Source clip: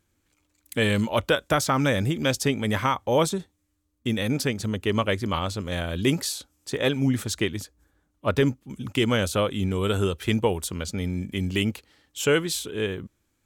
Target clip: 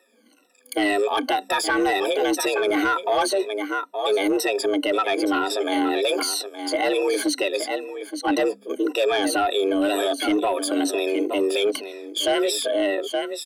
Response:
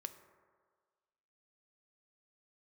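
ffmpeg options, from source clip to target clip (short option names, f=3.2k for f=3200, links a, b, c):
-filter_complex "[0:a]afftfilt=real='re*pow(10,24/40*sin(2*PI*(1.8*log(max(b,1)*sr/1024/100)/log(2)-(-2)*(pts-256)/sr)))':imag='im*pow(10,24/40*sin(2*PI*(1.8*log(max(b,1)*sr/1024/100)/log(2)-(-2)*(pts-256)/sr)))':win_size=1024:overlap=0.75,lowpass=12k,acontrast=25,afreqshift=200,bandreject=f=67.94:t=h:w=4,bandreject=f=135.88:t=h:w=4,bandreject=f=203.82:t=h:w=4,bandreject=f=271.76:t=h:w=4,asplit=2[a][b];[b]aecho=0:1:869:0.188[c];[a][c]amix=inputs=2:normalize=0,asoftclip=type=tanh:threshold=-5dB,alimiter=limit=-15.5dB:level=0:latency=1:release=48,equalizer=f=6.8k:w=3.9:g=-9.5,volume=1dB"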